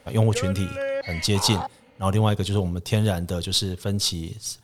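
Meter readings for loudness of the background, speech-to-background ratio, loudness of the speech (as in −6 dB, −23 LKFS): −31.5 LKFS, 7.5 dB, −24.0 LKFS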